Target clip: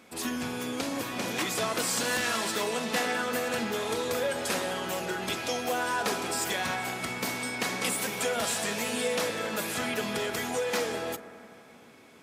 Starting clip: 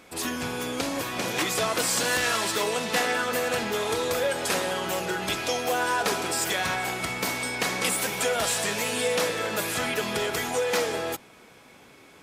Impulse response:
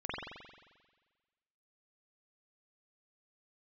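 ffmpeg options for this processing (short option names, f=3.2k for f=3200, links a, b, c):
-filter_complex "[0:a]highpass=75,equalizer=f=230:t=o:w=0.22:g=8.5,asplit=2[a][b];[1:a]atrim=start_sample=2205,asetrate=23373,aresample=44100,adelay=39[c];[b][c]afir=irnorm=-1:irlink=0,volume=-20.5dB[d];[a][d]amix=inputs=2:normalize=0,volume=-4dB"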